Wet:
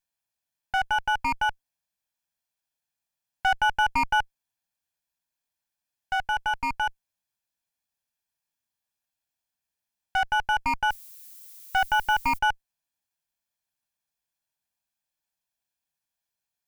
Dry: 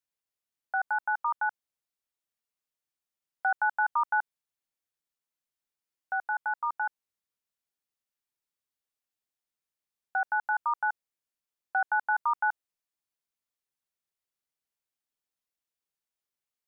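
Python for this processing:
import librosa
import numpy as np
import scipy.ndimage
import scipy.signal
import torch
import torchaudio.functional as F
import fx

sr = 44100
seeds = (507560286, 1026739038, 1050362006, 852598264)

y = fx.lower_of_two(x, sr, delay_ms=1.2)
y = fx.dmg_noise_colour(y, sr, seeds[0], colour='violet', level_db=-52.0, at=(10.9, 12.37), fade=0.02)
y = y * librosa.db_to_amplitude(5.0)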